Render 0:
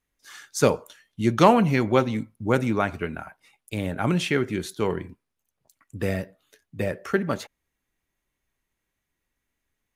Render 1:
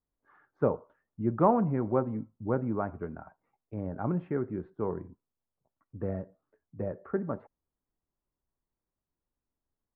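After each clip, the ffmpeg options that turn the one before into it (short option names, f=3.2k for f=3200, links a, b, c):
-af "lowpass=f=1.2k:w=0.5412,lowpass=f=1.2k:w=1.3066,volume=-7dB"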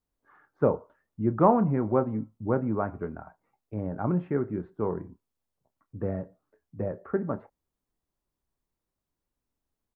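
-filter_complex "[0:a]asplit=2[a][b];[b]adelay=28,volume=-13.5dB[c];[a][c]amix=inputs=2:normalize=0,volume=3dB"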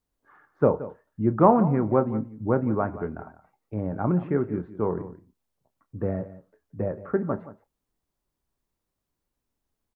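-af "aecho=1:1:174:0.168,volume=3dB"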